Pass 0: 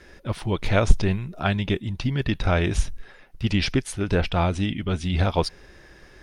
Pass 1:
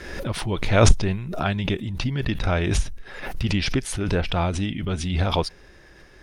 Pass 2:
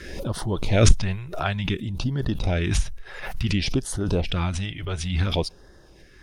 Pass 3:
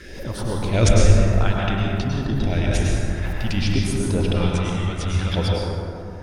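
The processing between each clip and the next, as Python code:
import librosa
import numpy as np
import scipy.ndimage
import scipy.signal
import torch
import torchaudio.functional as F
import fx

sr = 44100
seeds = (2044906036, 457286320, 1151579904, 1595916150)

y1 = fx.pre_swell(x, sr, db_per_s=53.0)
y1 = F.gain(torch.from_numpy(y1), -1.5).numpy()
y2 = fx.filter_lfo_notch(y1, sr, shape='sine', hz=0.57, low_hz=210.0, high_hz=2500.0, q=0.82)
y3 = fx.rev_plate(y2, sr, seeds[0], rt60_s=2.9, hf_ratio=0.35, predelay_ms=90, drr_db=-3.5)
y3 = F.gain(torch.from_numpy(y3), -2.0).numpy()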